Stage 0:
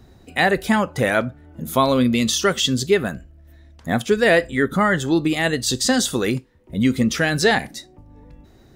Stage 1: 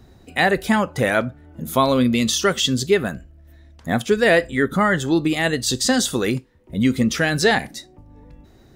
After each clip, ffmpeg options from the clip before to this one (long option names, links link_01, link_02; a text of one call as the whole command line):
ffmpeg -i in.wav -af anull out.wav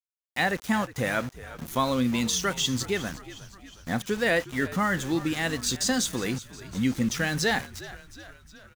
ffmpeg -i in.wav -filter_complex "[0:a]aeval=exprs='val(0)*gte(abs(val(0)),0.0376)':channel_layout=same,equalizer=frequency=400:width_type=o:width=0.33:gain=-6,equalizer=frequency=630:width_type=o:width=0.33:gain=-4,equalizer=frequency=6300:width_type=o:width=0.33:gain=4,asplit=7[link_01][link_02][link_03][link_04][link_05][link_06][link_07];[link_02]adelay=361,afreqshift=-69,volume=-16.5dB[link_08];[link_03]adelay=722,afreqshift=-138,volume=-21.1dB[link_09];[link_04]adelay=1083,afreqshift=-207,volume=-25.7dB[link_10];[link_05]adelay=1444,afreqshift=-276,volume=-30.2dB[link_11];[link_06]adelay=1805,afreqshift=-345,volume=-34.8dB[link_12];[link_07]adelay=2166,afreqshift=-414,volume=-39.4dB[link_13];[link_01][link_08][link_09][link_10][link_11][link_12][link_13]amix=inputs=7:normalize=0,volume=-7dB" out.wav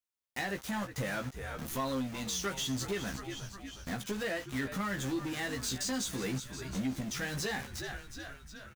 ffmpeg -i in.wav -filter_complex "[0:a]acompressor=threshold=-30dB:ratio=5,asoftclip=type=tanh:threshold=-31.5dB,asplit=2[link_01][link_02];[link_02]adelay=15,volume=-4dB[link_03];[link_01][link_03]amix=inputs=2:normalize=0" out.wav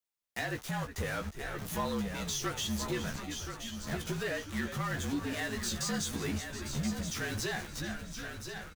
ffmpeg -i in.wav -af "afreqshift=-46,aecho=1:1:1026|2052|3078:0.398|0.0916|0.0211" out.wav